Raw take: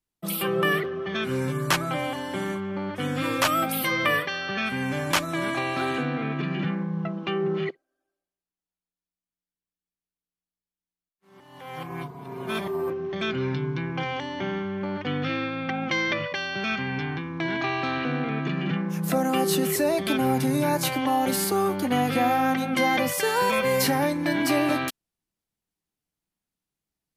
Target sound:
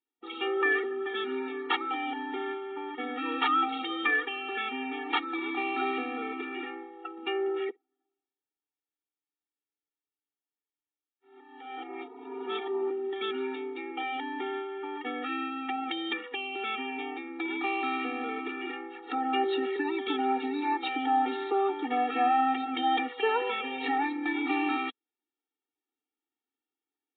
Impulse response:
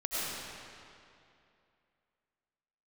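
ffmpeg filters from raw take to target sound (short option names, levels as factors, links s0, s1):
-filter_complex "[0:a]aresample=8000,aresample=44100,acrossover=split=360|930[s0][s1][s2];[s0]acompressor=threshold=0.0126:ratio=6[s3];[s3][s1][s2]amix=inputs=3:normalize=0,afftfilt=real='re*eq(mod(floor(b*sr/1024/240),2),1)':imag='im*eq(mod(floor(b*sr/1024/240),2),1)':win_size=1024:overlap=0.75"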